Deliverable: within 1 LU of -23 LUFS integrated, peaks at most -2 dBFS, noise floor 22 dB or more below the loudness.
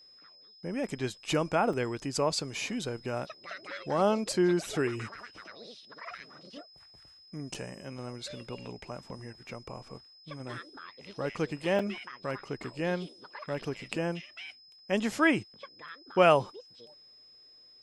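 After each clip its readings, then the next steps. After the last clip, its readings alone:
dropouts 3; longest dropout 4.5 ms; steady tone 5.1 kHz; tone level -54 dBFS; loudness -31.5 LUFS; peak level -9.5 dBFS; loudness target -23.0 LUFS
-> interpolate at 1.73/7.54/11.79 s, 4.5 ms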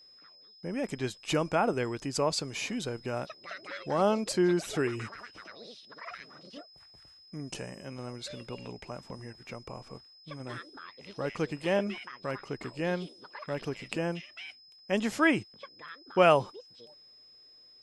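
dropouts 0; steady tone 5.1 kHz; tone level -54 dBFS
-> band-stop 5.1 kHz, Q 30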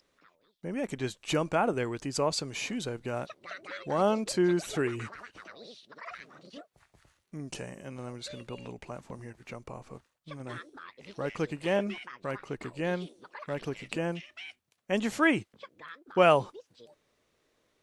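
steady tone not found; loudness -31.5 LUFS; peak level -9.5 dBFS; loudness target -23.0 LUFS
-> trim +8.5 dB; peak limiter -2 dBFS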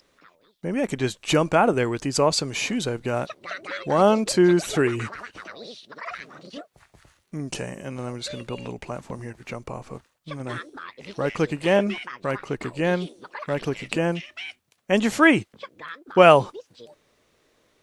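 loudness -23.0 LUFS; peak level -2.0 dBFS; noise floor -67 dBFS

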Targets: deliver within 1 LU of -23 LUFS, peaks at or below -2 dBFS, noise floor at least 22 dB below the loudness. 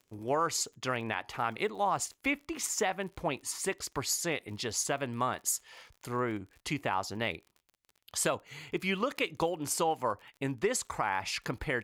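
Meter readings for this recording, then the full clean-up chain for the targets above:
tick rate 43 per s; loudness -33.0 LUFS; peak level -17.0 dBFS; loudness target -23.0 LUFS
-> de-click; trim +10 dB

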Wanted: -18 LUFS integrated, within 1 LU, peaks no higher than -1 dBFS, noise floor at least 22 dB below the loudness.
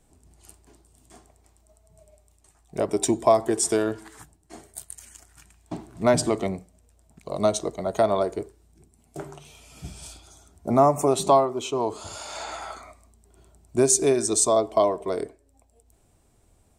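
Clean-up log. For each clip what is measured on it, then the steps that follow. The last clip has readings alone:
loudness -23.5 LUFS; peak level -4.5 dBFS; loudness target -18.0 LUFS
-> trim +5.5 dB; peak limiter -1 dBFS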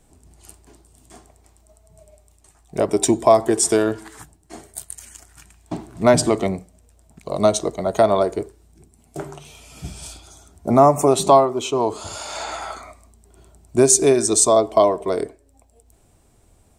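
loudness -18.0 LUFS; peak level -1.0 dBFS; noise floor -57 dBFS

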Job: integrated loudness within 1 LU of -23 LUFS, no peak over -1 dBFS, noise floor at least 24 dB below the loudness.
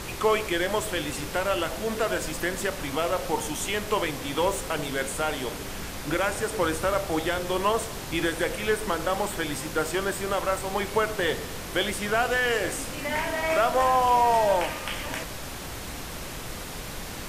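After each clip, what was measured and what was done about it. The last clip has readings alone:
noise floor -37 dBFS; noise floor target -51 dBFS; loudness -27.0 LUFS; peak level -10.5 dBFS; loudness target -23.0 LUFS
-> noise print and reduce 14 dB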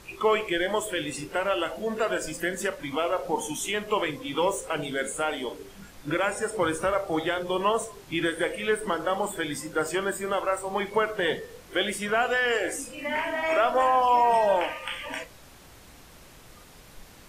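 noise floor -50 dBFS; noise floor target -51 dBFS
-> noise print and reduce 6 dB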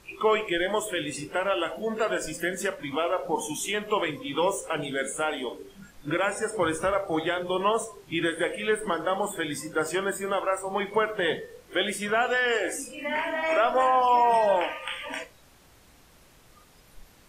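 noise floor -56 dBFS; loudness -27.0 LUFS; peak level -11.0 dBFS; loudness target -23.0 LUFS
-> trim +4 dB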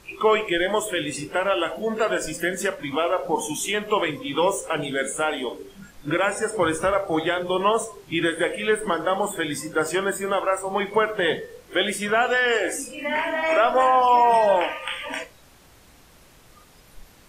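loudness -23.0 LUFS; peak level -7.0 dBFS; noise floor -52 dBFS

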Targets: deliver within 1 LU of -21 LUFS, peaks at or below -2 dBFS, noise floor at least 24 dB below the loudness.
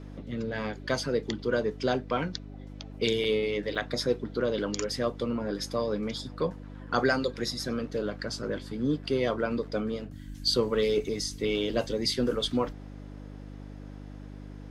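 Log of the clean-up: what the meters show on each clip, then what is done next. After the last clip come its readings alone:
dropouts 2; longest dropout 4.7 ms; hum 50 Hz; highest harmonic 300 Hz; hum level -41 dBFS; loudness -30.0 LUFS; peak level -13.0 dBFS; loudness target -21.0 LUFS
-> interpolate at 3.24/3.75 s, 4.7 ms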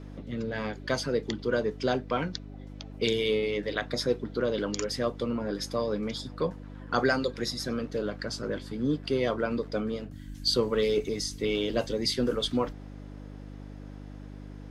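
dropouts 0; hum 50 Hz; highest harmonic 300 Hz; hum level -41 dBFS
-> de-hum 50 Hz, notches 6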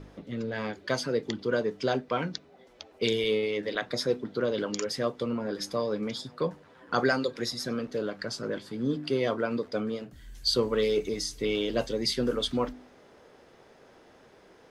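hum not found; loudness -30.0 LUFS; peak level -13.0 dBFS; loudness target -21.0 LUFS
-> trim +9 dB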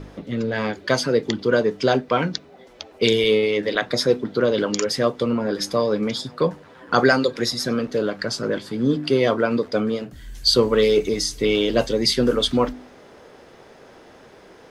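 loudness -21.0 LUFS; peak level -4.0 dBFS; noise floor -48 dBFS

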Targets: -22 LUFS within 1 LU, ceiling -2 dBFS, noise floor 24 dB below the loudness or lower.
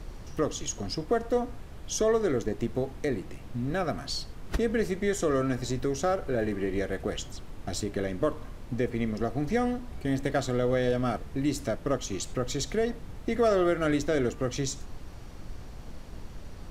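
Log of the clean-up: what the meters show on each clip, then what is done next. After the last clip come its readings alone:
noise floor -43 dBFS; noise floor target -54 dBFS; loudness -30.0 LUFS; peak level -13.0 dBFS; loudness target -22.0 LUFS
-> noise print and reduce 11 dB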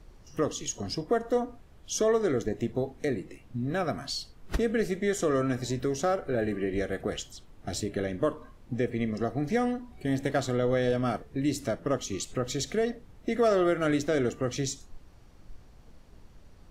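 noise floor -54 dBFS; loudness -30.0 LUFS; peak level -13.0 dBFS; loudness target -22.0 LUFS
-> trim +8 dB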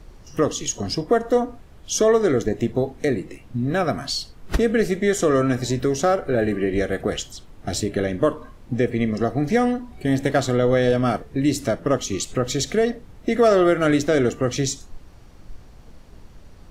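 loudness -22.0 LUFS; peak level -5.0 dBFS; noise floor -46 dBFS

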